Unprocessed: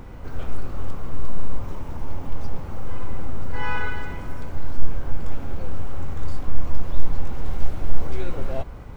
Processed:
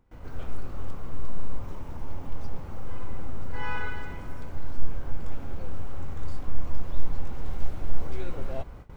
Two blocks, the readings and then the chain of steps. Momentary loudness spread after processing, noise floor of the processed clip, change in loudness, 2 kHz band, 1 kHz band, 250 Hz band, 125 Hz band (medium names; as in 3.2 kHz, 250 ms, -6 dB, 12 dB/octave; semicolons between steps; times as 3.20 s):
5 LU, -42 dBFS, -5.5 dB, -5.5 dB, -5.5 dB, -5.5 dB, -5.5 dB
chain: gate with hold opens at -29 dBFS; trim -5.5 dB